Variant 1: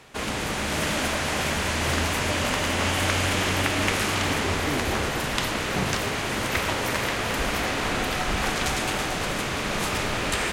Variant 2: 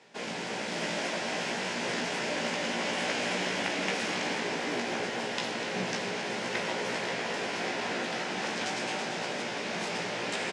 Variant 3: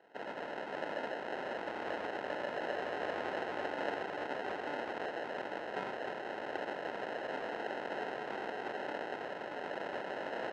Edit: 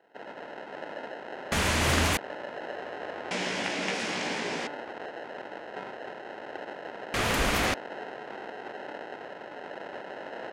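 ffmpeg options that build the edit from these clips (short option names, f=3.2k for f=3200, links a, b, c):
-filter_complex "[0:a]asplit=2[a][b];[2:a]asplit=4[c][d][e][f];[c]atrim=end=1.522[g];[a]atrim=start=1.518:end=2.172[h];[d]atrim=start=2.168:end=3.312[i];[1:a]atrim=start=3.308:end=4.672[j];[e]atrim=start=4.668:end=7.142[k];[b]atrim=start=7.138:end=7.742[l];[f]atrim=start=7.738[m];[g][h]acrossfade=d=0.004:c1=hsin:c2=hsin[n];[n][i]acrossfade=d=0.004:c1=hsin:c2=hsin[o];[o][j]acrossfade=d=0.004:c1=hsin:c2=hsin[p];[p][k]acrossfade=d=0.004:c1=hsin:c2=hsin[q];[q][l]acrossfade=d=0.004:c1=hsin:c2=hsin[r];[r][m]acrossfade=d=0.004:c1=hsin:c2=hsin"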